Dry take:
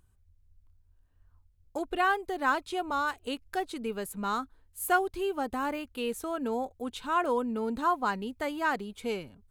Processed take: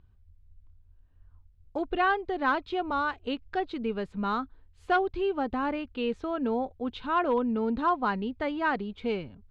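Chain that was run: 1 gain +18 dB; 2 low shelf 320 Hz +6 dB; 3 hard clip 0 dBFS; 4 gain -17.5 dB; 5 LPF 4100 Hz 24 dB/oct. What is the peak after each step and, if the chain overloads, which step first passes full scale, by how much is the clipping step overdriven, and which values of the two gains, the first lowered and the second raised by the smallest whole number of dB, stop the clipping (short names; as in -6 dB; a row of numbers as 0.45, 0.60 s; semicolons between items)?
+4.5, +5.0, 0.0, -17.5, -17.0 dBFS; step 1, 5.0 dB; step 1 +13 dB, step 4 -12.5 dB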